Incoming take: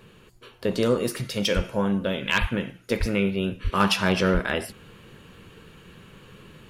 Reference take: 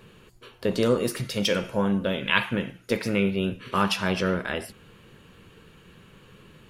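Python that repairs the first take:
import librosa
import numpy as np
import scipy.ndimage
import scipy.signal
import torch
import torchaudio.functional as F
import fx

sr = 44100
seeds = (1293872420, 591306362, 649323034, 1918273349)

y = fx.fix_declip(x, sr, threshold_db=-11.5)
y = fx.fix_deplosive(y, sr, at_s=(1.55, 2.4, 2.99, 3.63, 4.33))
y = fx.fix_level(y, sr, at_s=3.8, step_db=-3.5)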